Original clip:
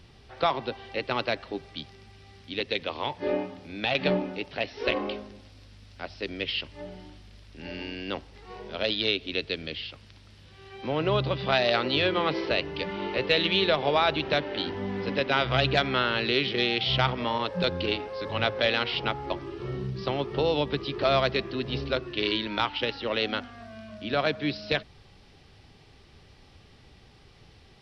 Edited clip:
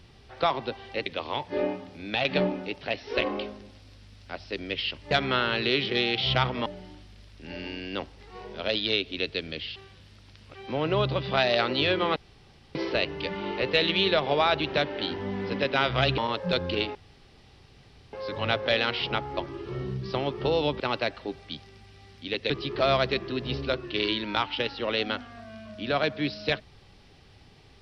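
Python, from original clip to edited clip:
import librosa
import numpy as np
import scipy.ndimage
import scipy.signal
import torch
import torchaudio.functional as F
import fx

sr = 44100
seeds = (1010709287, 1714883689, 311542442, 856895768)

y = fx.edit(x, sr, fx.move(start_s=1.06, length_s=1.7, to_s=20.73),
    fx.reverse_span(start_s=9.91, length_s=0.79),
    fx.insert_room_tone(at_s=12.31, length_s=0.59),
    fx.move(start_s=15.74, length_s=1.55, to_s=6.81),
    fx.insert_room_tone(at_s=18.06, length_s=1.18), tone=tone)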